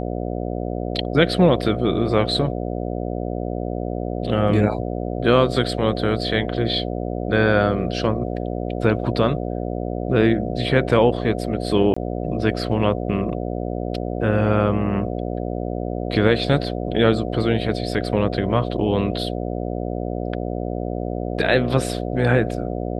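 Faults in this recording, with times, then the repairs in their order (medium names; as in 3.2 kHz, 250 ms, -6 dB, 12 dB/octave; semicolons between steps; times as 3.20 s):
buzz 60 Hz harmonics 12 -26 dBFS
11.94–11.96 s: dropout 25 ms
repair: de-hum 60 Hz, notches 12; interpolate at 11.94 s, 25 ms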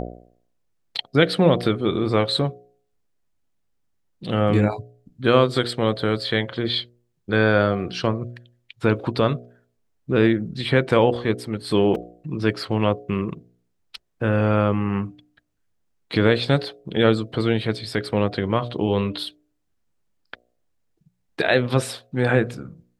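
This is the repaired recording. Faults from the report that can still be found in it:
nothing left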